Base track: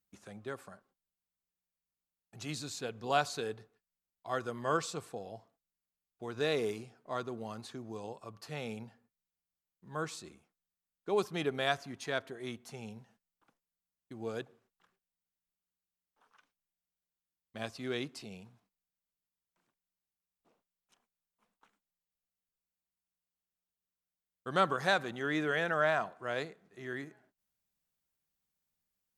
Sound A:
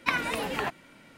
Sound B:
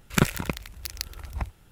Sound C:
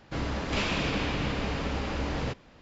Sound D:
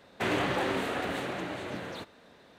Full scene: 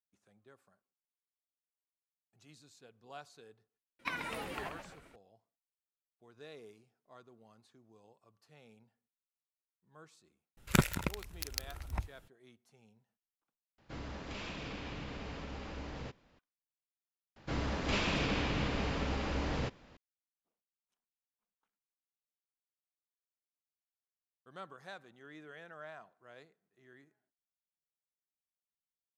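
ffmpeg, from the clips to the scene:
-filter_complex "[3:a]asplit=2[s0][s1];[0:a]volume=0.106[s2];[1:a]asplit=6[s3][s4][s5][s6][s7][s8];[s4]adelay=133,afreqshift=-120,volume=0.447[s9];[s5]adelay=266,afreqshift=-240,volume=0.207[s10];[s6]adelay=399,afreqshift=-360,volume=0.0944[s11];[s7]adelay=532,afreqshift=-480,volume=0.0437[s12];[s8]adelay=665,afreqshift=-600,volume=0.02[s13];[s3][s9][s10][s11][s12][s13]amix=inputs=6:normalize=0[s14];[s0]alimiter=limit=0.0891:level=0:latency=1:release=71[s15];[s2]asplit=2[s16][s17];[s16]atrim=end=13.784[s18];[s15]atrim=end=2.61,asetpts=PTS-STARTPTS,volume=0.237[s19];[s17]atrim=start=16.386[s20];[s14]atrim=end=1.17,asetpts=PTS-STARTPTS,volume=0.266,afade=t=in:d=0.004:c=hsin,afade=t=out:st=1.166:d=0.004:c=hsin,adelay=3990[s21];[2:a]atrim=end=1.71,asetpts=PTS-STARTPTS,volume=0.501,afade=t=in:d=0.004:c=hsin,afade=t=out:st=1.706:d=0.004:c=hsin,adelay=10570[s22];[s1]atrim=end=2.61,asetpts=PTS-STARTPTS,volume=0.631,afade=t=in:d=0.004:c=hsin,afade=t=out:st=2.606:d=0.004:c=hsin,adelay=17360[s23];[s18][s19]acrossfade=d=0.004:c1=hsin:c2=hsin[s24];[s24][s20]acrossfade=d=0.004:c1=hsin:c2=hsin[s25];[s25][s21][s22][s23]amix=inputs=4:normalize=0"

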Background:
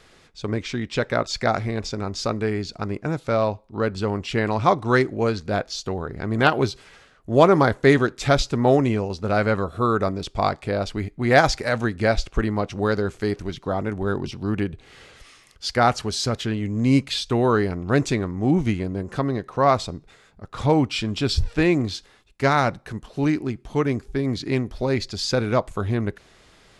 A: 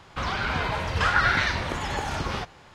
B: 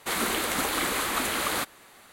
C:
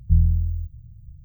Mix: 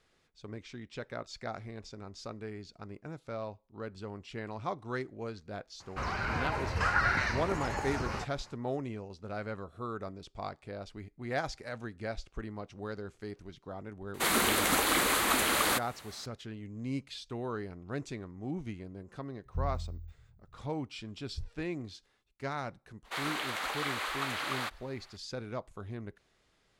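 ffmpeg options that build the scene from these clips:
-filter_complex "[2:a]asplit=2[s0][s1];[0:a]volume=0.126[s2];[1:a]equalizer=f=3400:w=4.2:g=-14[s3];[s1]acrossover=split=520 5300:gain=0.126 1 0.2[s4][s5][s6];[s4][s5][s6]amix=inputs=3:normalize=0[s7];[s3]atrim=end=2.74,asetpts=PTS-STARTPTS,volume=0.501,afade=t=in:d=0.004:c=hsin,afade=t=out:st=2.736:d=0.004:c=hsin,adelay=5800[s8];[s0]atrim=end=2.12,asetpts=PTS-STARTPTS,afade=t=in:d=0.004:c=hsin,afade=t=out:st=2.116:d=0.004:c=hsin,adelay=14140[s9];[3:a]atrim=end=1.24,asetpts=PTS-STARTPTS,volume=0.133,afade=t=in:d=0.004:c=hsin,afade=t=out:st=1.236:d=0.004:c=hsin,adelay=19450[s10];[s7]atrim=end=2.12,asetpts=PTS-STARTPTS,volume=0.531,afade=t=in:d=0.004:c=hsin,afade=t=out:st=2.116:d=0.004:c=hsin,adelay=23050[s11];[s2][s8][s9][s10][s11]amix=inputs=5:normalize=0"

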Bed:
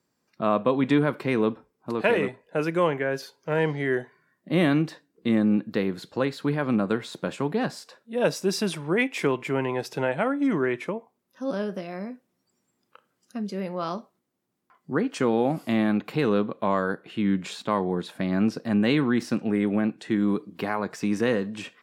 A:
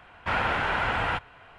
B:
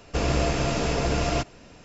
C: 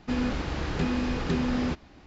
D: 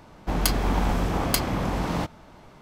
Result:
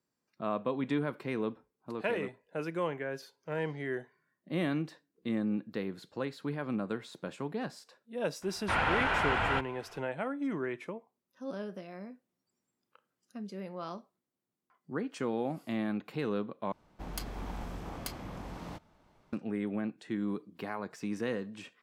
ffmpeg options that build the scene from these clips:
-filter_complex "[0:a]volume=0.299,asplit=2[s0][s1];[s0]atrim=end=16.724[s2];[4:a]atrim=end=2.61,asetpts=PTS-STARTPTS,volume=0.15[s3];[s1]atrim=start=19.326[s4];[1:a]atrim=end=1.58,asetpts=PTS-STARTPTS,volume=0.708,afade=t=in:d=0.004:c=hsin,afade=t=out:st=1.576:d=0.004:c=hsin,adelay=371322S[s5];[s2][s3]acrossfade=d=0.004:c1=hsin:c2=hsin[s6];[s6][s4]acrossfade=d=0.004:c1=hsin:c2=hsin[s7];[s7][s5]amix=inputs=2:normalize=0"

